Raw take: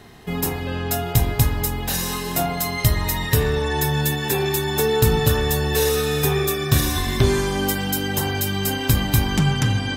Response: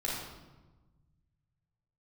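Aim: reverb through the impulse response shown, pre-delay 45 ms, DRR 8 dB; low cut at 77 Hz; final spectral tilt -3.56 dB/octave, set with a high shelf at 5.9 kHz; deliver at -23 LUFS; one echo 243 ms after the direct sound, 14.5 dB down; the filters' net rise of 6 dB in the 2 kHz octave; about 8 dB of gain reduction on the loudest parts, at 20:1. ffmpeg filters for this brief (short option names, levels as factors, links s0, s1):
-filter_complex "[0:a]highpass=77,equalizer=f=2000:t=o:g=7,highshelf=f=5900:g=3.5,acompressor=threshold=0.1:ratio=20,aecho=1:1:243:0.188,asplit=2[s0][s1];[1:a]atrim=start_sample=2205,adelay=45[s2];[s1][s2]afir=irnorm=-1:irlink=0,volume=0.211[s3];[s0][s3]amix=inputs=2:normalize=0"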